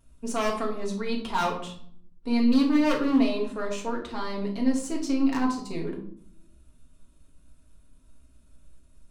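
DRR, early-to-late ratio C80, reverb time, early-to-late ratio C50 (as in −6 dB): −1.5 dB, 12.0 dB, 0.60 s, 8.0 dB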